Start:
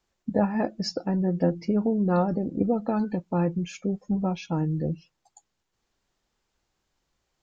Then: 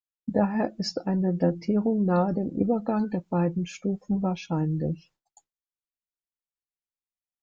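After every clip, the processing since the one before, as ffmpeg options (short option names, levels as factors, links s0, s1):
-af "agate=range=0.0224:threshold=0.00282:ratio=3:detection=peak"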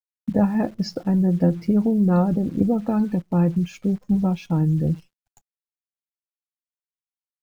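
-af "acrusher=bits=9:dc=4:mix=0:aa=0.000001,bass=f=250:g=9,treble=f=4000:g=-3"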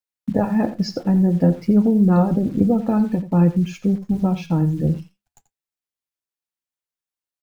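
-af "flanger=delay=4.9:depth=5.4:regen=-76:speed=0.54:shape=triangular,aecho=1:1:86:0.2,volume=2.24"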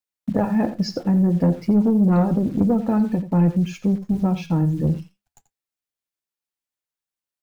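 -af "asoftclip=type=tanh:threshold=0.335"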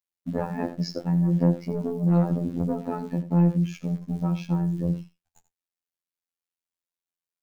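-af "afftfilt=real='hypot(re,im)*cos(PI*b)':imag='0':win_size=2048:overlap=0.75,volume=0.794"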